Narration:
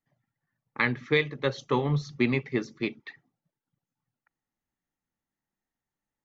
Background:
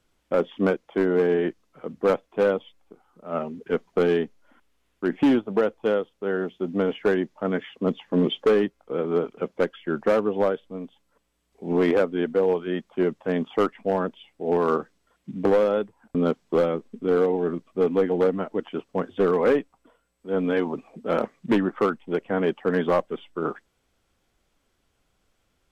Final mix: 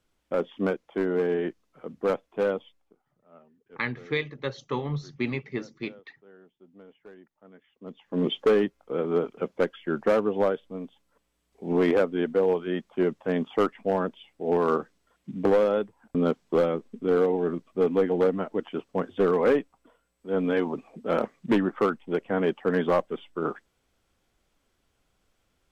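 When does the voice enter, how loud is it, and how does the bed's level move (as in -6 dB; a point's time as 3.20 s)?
3.00 s, -4.0 dB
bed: 2.66 s -4.5 dB
3.41 s -27 dB
7.63 s -27 dB
8.29 s -1.5 dB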